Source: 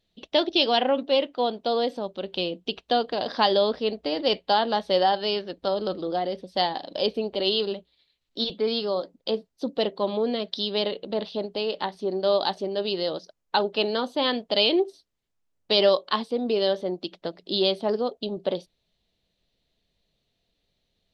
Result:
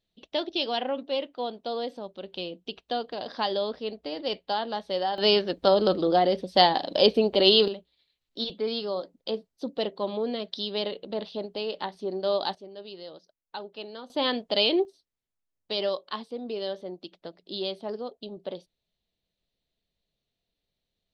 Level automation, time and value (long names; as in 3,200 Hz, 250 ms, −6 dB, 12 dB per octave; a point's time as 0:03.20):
−7 dB
from 0:05.18 +5.5 dB
from 0:07.68 −4 dB
from 0:12.55 −15 dB
from 0:14.10 −2 dB
from 0:14.85 −9 dB